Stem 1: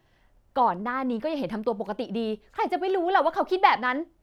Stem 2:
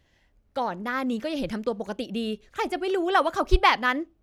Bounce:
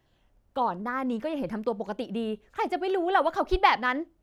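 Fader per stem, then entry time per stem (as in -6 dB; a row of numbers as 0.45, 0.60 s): -5.0, -10.5 dB; 0.00, 0.00 s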